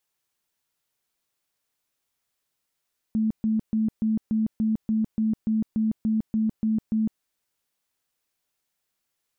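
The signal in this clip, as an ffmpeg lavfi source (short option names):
-f lavfi -i "aevalsrc='0.1*sin(2*PI*219*mod(t,0.29))*lt(mod(t,0.29),34/219)':d=4.06:s=44100"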